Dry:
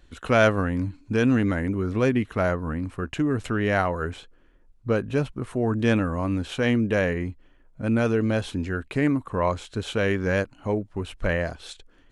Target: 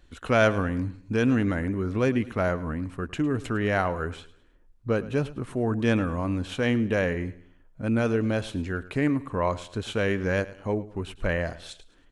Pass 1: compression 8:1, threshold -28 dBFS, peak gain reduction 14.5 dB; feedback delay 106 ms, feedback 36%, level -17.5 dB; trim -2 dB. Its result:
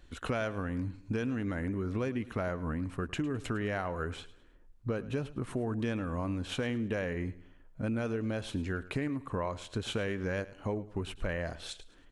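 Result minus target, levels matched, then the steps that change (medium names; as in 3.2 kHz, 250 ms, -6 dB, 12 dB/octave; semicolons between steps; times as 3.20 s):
compression: peak gain reduction +14.5 dB
remove: compression 8:1, threshold -28 dBFS, peak gain reduction 14.5 dB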